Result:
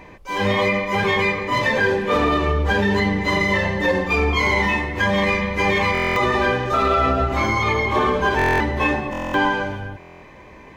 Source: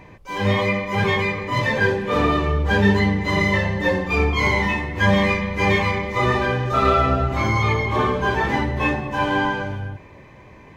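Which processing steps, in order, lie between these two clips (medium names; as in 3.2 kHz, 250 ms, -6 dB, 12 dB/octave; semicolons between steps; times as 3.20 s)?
peak limiter -12 dBFS, peak gain reduction 8 dB; peaking EQ 120 Hz -9 dB 1 oct; buffer glitch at 5.93/8.37/9.11/9.99 s, samples 1024, times 9; trim +3.5 dB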